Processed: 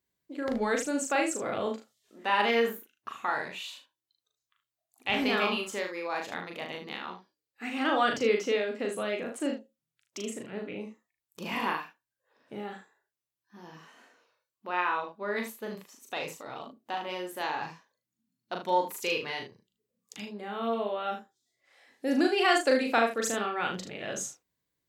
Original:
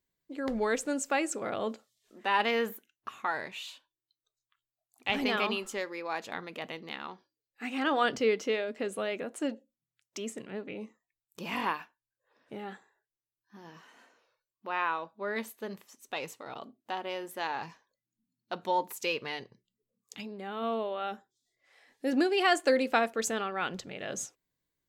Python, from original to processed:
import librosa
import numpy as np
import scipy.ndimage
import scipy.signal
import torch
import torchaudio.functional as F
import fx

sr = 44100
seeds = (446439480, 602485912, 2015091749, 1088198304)

y = scipy.signal.sosfilt(scipy.signal.butter(2, 44.0, 'highpass', fs=sr, output='sos'), x)
y = fx.room_early_taps(y, sr, ms=(39, 76), db=(-3.5, -9.0))